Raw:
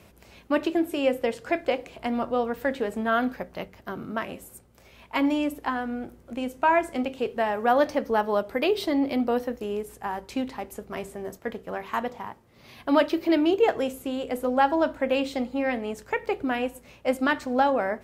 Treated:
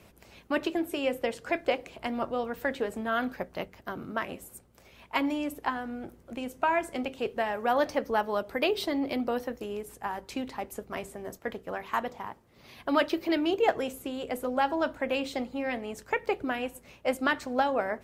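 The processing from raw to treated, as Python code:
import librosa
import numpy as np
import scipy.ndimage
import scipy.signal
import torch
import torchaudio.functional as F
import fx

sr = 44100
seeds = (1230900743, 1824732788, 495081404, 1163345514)

y = fx.hpss(x, sr, part='harmonic', gain_db=-6)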